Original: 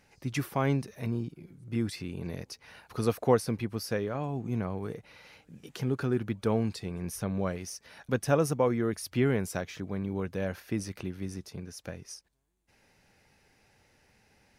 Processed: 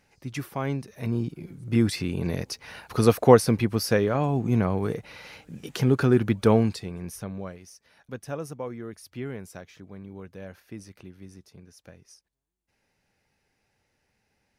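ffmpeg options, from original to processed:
ffmpeg -i in.wav -af "volume=9dB,afade=type=in:start_time=0.87:duration=0.58:silence=0.298538,afade=type=out:start_time=6.5:duration=0.35:silence=0.421697,afade=type=out:start_time=6.85:duration=0.74:silence=0.316228" out.wav

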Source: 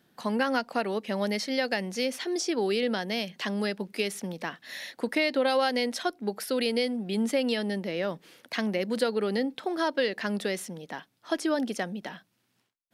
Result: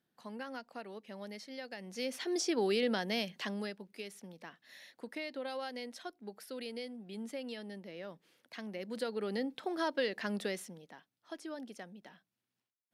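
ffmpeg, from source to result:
ffmpeg -i in.wav -af "volume=5dB,afade=type=in:start_time=1.77:duration=0.59:silence=0.223872,afade=type=out:start_time=3.21:duration=0.61:silence=0.266073,afade=type=in:start_time=8.63:duration=0.99:silence=0.354813,afade=type=out:start_time=10.46:duration=0.49:silence=0.316228" out.wav

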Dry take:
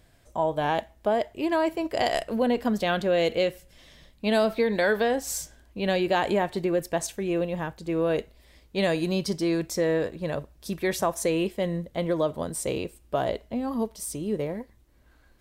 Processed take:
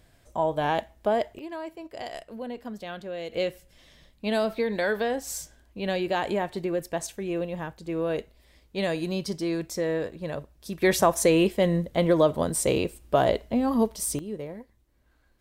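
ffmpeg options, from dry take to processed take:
ffmpeg -i in.wav -af "asetnsamples=nb_out_samples=441:pad=0,asendcmd='1.39 volume volume -12dB;3.33 volume volume -3dB;10.82 volume volume 5dB;14.19 volume volume -6.5dB',volume=0dB" out.wav

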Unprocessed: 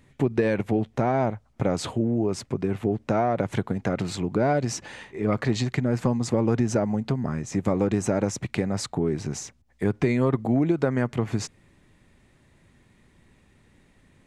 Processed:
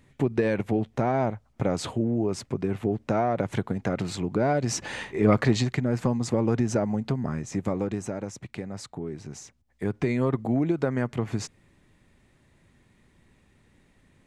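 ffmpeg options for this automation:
ffmpeg -i in.wav -af "volume=14dB,afade=type=in:start_time=4.62:duration=0.36:silence=0.375837,afade=type=out:start_time=4.98:duration=0.79:silence=0.375837,afade=type=out:start_time=7.35:duration=0.83:silence=0.398107,afade=type=in:start_time=9.27:duration=0.93:silence=0.446684" out.wav

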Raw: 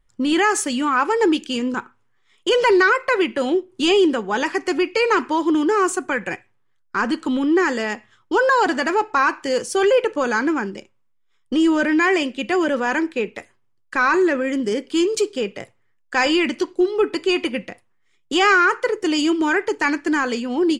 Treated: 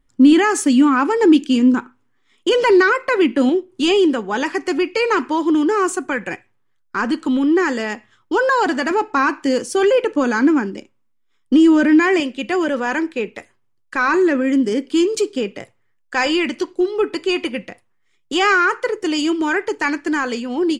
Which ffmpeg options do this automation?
ffmpeg -i in.wav -af "asetnsamples=nb_out_samples=441:pad=0,asendcmd='3.49 equalizer g 4;8.91 equalizer g 11;12.2 equalizer g 1.5;14.08 equalizer g 7.5;15.59 equalizer g 0',equalizer=frequency=270:width_type=o:width=0.51:gain=13.5" out.wav

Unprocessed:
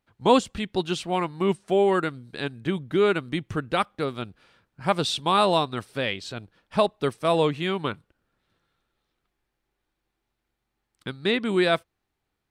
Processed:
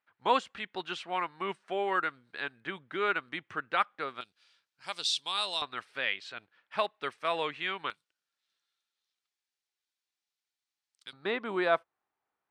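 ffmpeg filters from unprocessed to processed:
ffmpeg -i in.wav -af "asetnsamples=nb_out_samples=441:pad=0,asendcmd='4.21 bandpass f 5100;5.62 bandpass f 1900;7.9 bandpass f 5700;11.13 bandpass f 1000',bandpass=frequency=1600:width_type=q:width=1.2:csg=0" out.wav

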